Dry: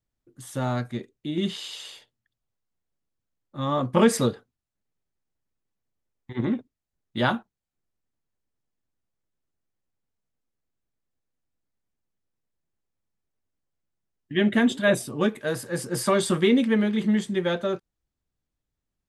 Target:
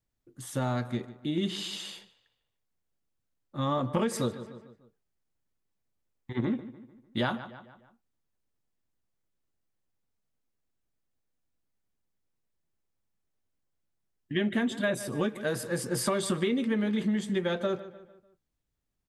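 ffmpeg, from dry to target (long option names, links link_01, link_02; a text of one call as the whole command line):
ffmpeg -i in.wav -filter_complex "[0:a]asplit=2[link_01][link_02];[link_02]adelay=149,lowpass=frequency=4000:poles=1,volume=-18dB,asplit=2[link_03][link_04];[link_04]adelay=149,lowpass=frequency=4000:poles=1,volume=0.46,asplit=2[link_05][link_06];[link_06]adelay=149,lowpass=frequency=4000:poles=1,volume=0.46,asplit=2[link_07][link_08];[link_08]adelay=149,lowpass=frequency=4000:poles=1,volume=0.46[link_09];[link_03][link_05][link_07][link_09]amix=inputs=4:normalize=0[link_10];[link_01][link_10]amix=inputs=2:normalize=0,acompressor=threshold=-25dB:ratio=6" out.wav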